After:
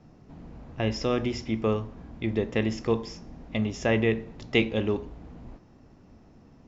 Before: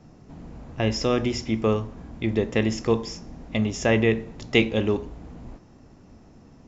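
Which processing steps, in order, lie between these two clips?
LPF 5400 Hz 12 dB/oct; gain -3.5 dB

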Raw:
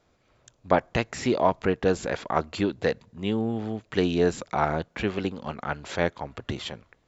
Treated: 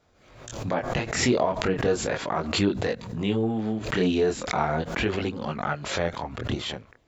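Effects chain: limiter -15 dBFS, peak gain reduction 10.5 dB; chorus voices 2, 0.37 Hz, delay 23 ms, depth 4.7 ms; backwards sustainer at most 65 dB/s; gain +4.5 dB

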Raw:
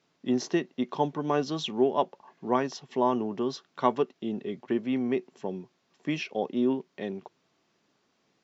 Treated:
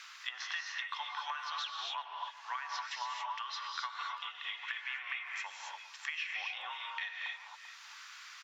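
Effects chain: treble ducked by the level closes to 2300 Hz, closed at -25 dBFS; steep high-pass 1200 Hz 36 dB/oct; compressor, threshold -44 dBFS, peak gain reduction 14 dB; speakerphone echo 0.39 s, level -19 dB; non-linear reverb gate 0.3 s rising, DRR 0.5 dB; three-band squash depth 70%; gain +7.5 dB

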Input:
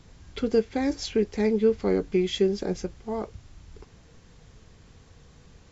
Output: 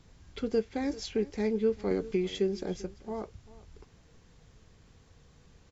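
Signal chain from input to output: echo 0.392 s -19.5 dB; 1.91–2.35 three-band squash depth 70%; gain -6 dB

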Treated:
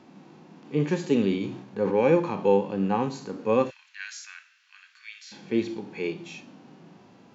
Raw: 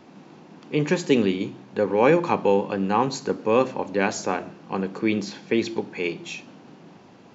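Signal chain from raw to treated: 3.7–5.32 steep high-pass 1600 Hz 36 dB/oct; harmonic-percussive split percussive -14 dB; 1.22–2.01 sustainer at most 77 dB/s

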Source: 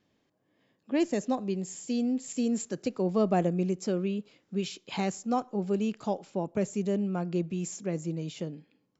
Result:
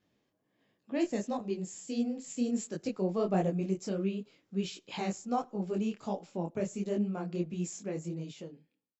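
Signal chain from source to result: ending faded out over 0.96 s; detuned doubles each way 50 cents

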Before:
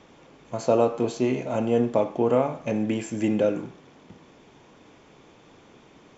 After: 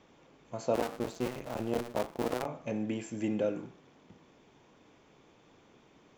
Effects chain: 0.74–2.46 cycle switcher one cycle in 2, muted; gain -8.5 dB

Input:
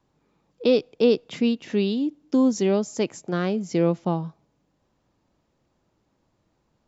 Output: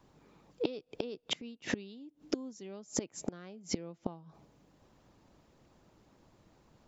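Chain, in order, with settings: harmonic-percussive split percussive +5 dB; flipped gate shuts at -21 dBFS, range -28 dB; gain +3 dB

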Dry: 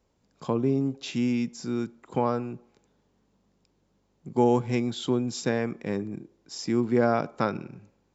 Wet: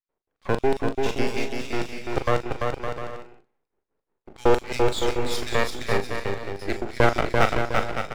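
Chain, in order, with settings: low-pass opened by the level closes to 1200 Hz, open at -21.5 dBFS; gate -53 dBFS, range -13 dB; HPF 100 Hz 24 dB/oct; bell 1900 Hz +13 dB 1.3 oct; LFO high-pass square 5.5 Hz 400–4100 Hz; half-wave rectifier; doubler 40 ms -9.5 dB; bouncing-ball echo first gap 0.34 s, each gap 0.65×, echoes 5; gain +3.5 dB

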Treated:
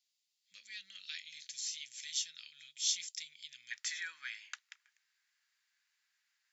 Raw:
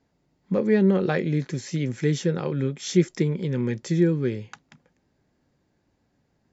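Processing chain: inverse Chebyshev high-pass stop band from 920 Hz, stop band 60 dB, from 3.7 s stop band from 470 Hz; gain +1.5 dB

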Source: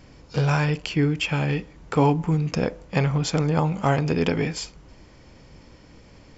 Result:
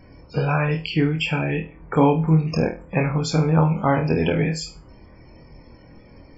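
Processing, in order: loudest bins only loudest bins 64; on a send: flutter echo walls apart 4.3 m, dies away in 0.29 s; on the sum: gain +1.5 dB

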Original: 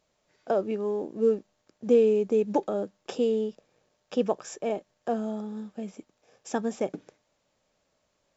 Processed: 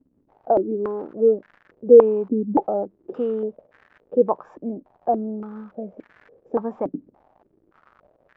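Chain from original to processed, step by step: crackle 190/s -37 dBFS; stepped low-pass 3.5 Hz 270–1700 Hz

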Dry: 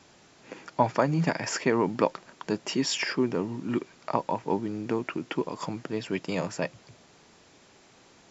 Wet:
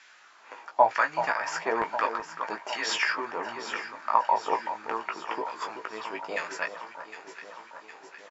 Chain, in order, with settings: tilt +3.5 dB/oct; LFO band-pass saw down 1.1 Hz 660–1800 Hz; doubler 18 ms -5.5 dB; echo with dull and thin repeats by turns 0.38 s, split 1500 Hz, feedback 78%, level -9 dB; gain +7.5 dB

